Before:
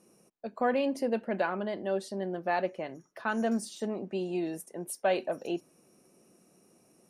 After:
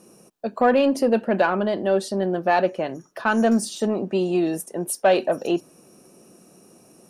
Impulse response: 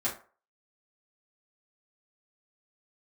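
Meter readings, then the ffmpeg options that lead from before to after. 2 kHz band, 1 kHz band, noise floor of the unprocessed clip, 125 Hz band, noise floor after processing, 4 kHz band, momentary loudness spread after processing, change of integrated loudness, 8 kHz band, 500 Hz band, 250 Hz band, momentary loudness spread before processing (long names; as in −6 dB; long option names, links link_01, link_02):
+9.5 dB, +10.0 dB, −65 dBFS, +11.0 dB, −54 dBFS, +10.5 dB, 9 LU, +10.5 dB, +11.5 dB, +10.5 dB, +10.5 dB, 9 LU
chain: -filter_complex "[0:a]equalizer=frequency=2100:width_type=o:width=0.21:gain=-7.5,asplit=2[link_01][link_02];[link_02]asoftclip=type=tanh:threshold=-27.5dB,volume=-6dB[link_03];[link_01][link_03]amix=inputs=2:normalize=0,volume=8dB"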